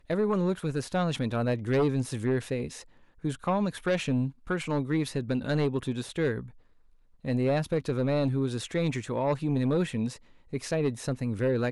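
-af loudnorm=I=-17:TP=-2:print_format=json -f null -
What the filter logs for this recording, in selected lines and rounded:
"input_i" : "-29.4",
"input_tp" : "-20.0",
"input_lra" : "1.4",
"input_thresh" : "-39.6",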